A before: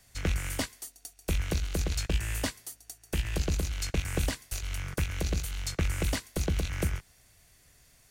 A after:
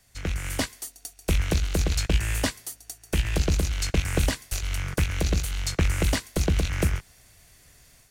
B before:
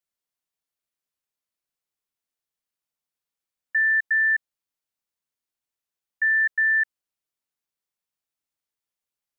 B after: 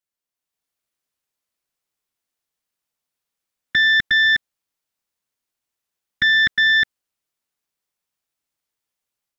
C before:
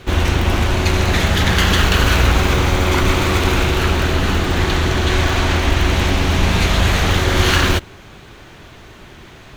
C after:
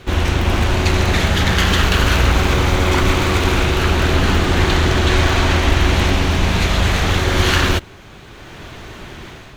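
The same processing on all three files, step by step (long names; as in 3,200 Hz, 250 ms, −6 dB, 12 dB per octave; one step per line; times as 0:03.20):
automatic gain control gain up to 7 dB
highs frequency-modulated by the lows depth 0.2 ms
level −1 dB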